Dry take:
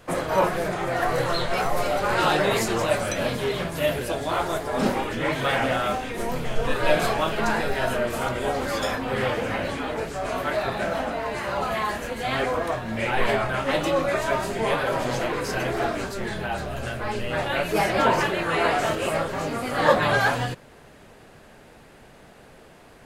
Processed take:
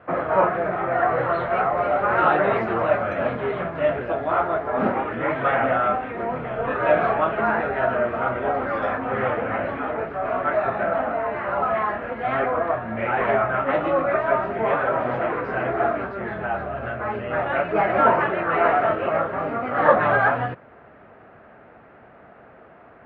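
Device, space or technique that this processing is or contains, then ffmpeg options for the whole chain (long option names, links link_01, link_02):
bass cabinet: -af "highpass=77,equalizer=frequency=150:width_type=q:width=4:gain=-4,equalizer=frequency=680:width_type=q:width=4:gain=6,equalizer=frequency=1300:width_type=q:width=4:gain=7,lowpass=frequency=2200:width=0.5412,lowpass=frequency=2200:width=1.3066"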